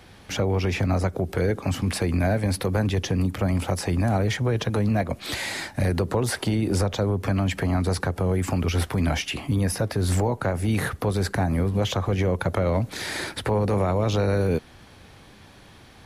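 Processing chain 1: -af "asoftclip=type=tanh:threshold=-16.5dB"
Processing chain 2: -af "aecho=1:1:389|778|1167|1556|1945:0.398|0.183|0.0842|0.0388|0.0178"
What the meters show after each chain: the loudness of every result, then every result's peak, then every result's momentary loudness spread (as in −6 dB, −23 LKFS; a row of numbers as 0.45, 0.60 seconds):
−26.5, −24.0 LKFS; −17.0, −10.0 dBFS; 3, 5 LU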